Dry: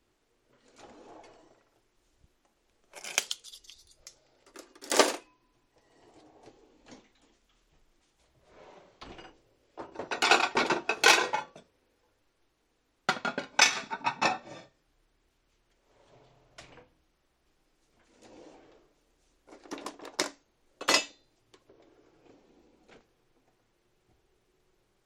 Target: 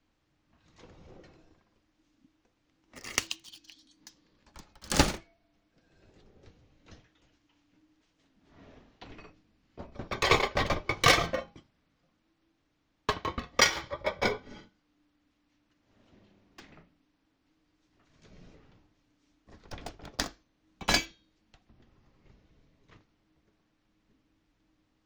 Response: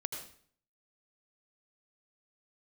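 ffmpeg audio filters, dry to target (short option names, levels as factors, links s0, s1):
-filter_complex "[0:a]acrossover=split=7200[s0][s1];[s1]acrusher=bits=6:dc=4:mix=0:aa=0.000001[s2];[s0][s2]amix=inputs=2:normalize=0,afreqshift=-330,volume=0.891"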